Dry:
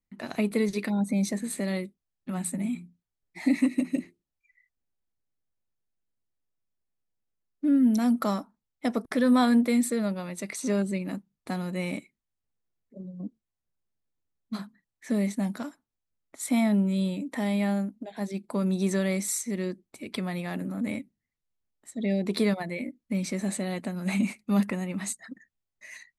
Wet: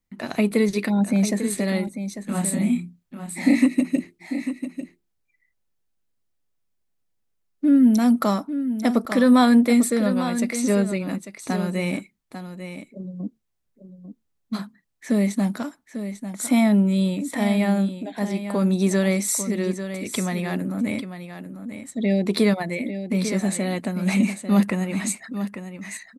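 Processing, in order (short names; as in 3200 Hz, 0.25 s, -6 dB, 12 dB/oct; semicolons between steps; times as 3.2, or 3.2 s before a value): 1.84–3.64 doubler 29 ms -2.5 dB; echo 0.846 s -10 dB; gain +6 dB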